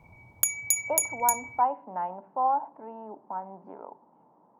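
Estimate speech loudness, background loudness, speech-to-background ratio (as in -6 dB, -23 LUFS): -30.5 LUFS, -27.0 LUFS, -3.5 dB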